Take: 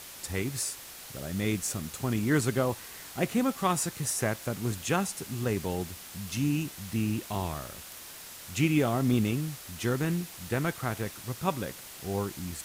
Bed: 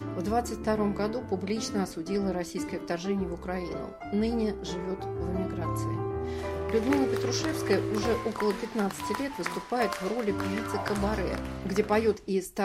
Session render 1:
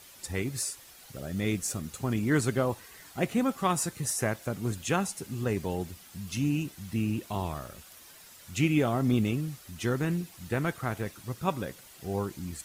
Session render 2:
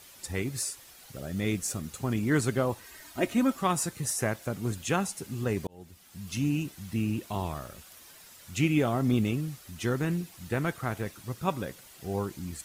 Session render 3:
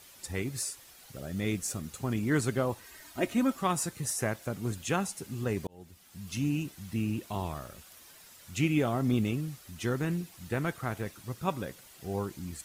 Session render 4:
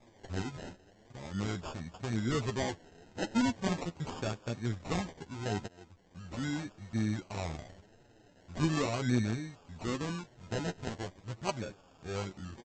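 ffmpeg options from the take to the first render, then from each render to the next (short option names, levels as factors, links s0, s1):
-af "afftdn=nr=9:nf=-46"
-filter_complex "[0:a]asettb=1/sr,asplit=3[s0][s1][s2];[s0]atrim=end=2.854[s3];[s1]atrim=start=2.85:end=3.59,asetpts=PTS-STARTPTS,afade=t=in:d=0.004:c=qsin,afade=t=out:st=0.736:d=0.004:c=qsin,aecho=1:1:3.2:0.65,atrim=end_sample=32634[s4];[s2]atrim=start=3.586[s5];[s3][s4]acrossfade=d=0.004:c1=hsin:c2=qsin[s6];[s6][s5]acrossfade=d=0.004:c1=qsin:c2=hsin,asplit=2[s7][s8];[s7]atrim=end=5.67,asetpts=PTS-STARTPTS,afade=t=out:st=5.666:d=0.004:c=hsin[s9];[s8]atrim=start=5.67,asetpts=PTS-STARTPTS,afade=t=in:d=0.68[s10];[s9][s10]concat=n=2:v=0:a=1"
-af "volume=0.794"
-af "aresample=16000,acrusher=samples=11:mix=1:aa=0.000001:lfo=1:lforange=6.6:lforate=0.4,aresample=44100,flanger=delay=8.1:depth=4.6:regen=23:speed=0.87:shape=triangular"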